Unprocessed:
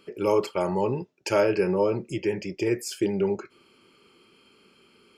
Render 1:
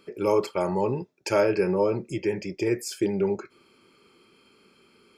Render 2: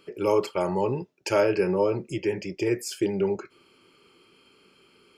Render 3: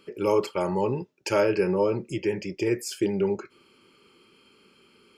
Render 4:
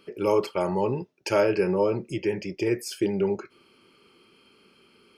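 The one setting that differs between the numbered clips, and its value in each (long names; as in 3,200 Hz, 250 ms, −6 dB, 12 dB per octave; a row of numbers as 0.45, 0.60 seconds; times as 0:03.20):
notch filter, centre frequency: 2,900, 220, 690, 7,300 Hertz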